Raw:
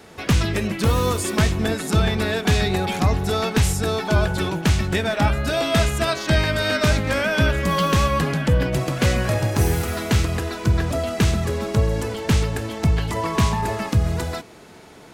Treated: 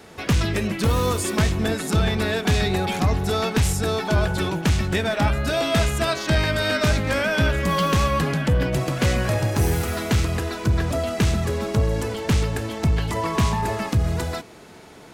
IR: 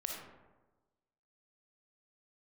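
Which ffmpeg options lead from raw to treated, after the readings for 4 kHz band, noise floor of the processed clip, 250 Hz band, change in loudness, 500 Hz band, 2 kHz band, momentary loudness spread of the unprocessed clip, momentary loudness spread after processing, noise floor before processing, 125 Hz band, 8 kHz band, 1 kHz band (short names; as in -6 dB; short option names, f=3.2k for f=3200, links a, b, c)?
-1.0 dB, -44 dBFS, -1.0 dB, -1.0 dB, -1.0 dB, -1.0 dB, 4 LU, 4 LU, -44 dBFS, -1.5 dB, -1.0 dB, -1.0 dB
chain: -af "asoftclip=type=tanh:threshold=-11dB"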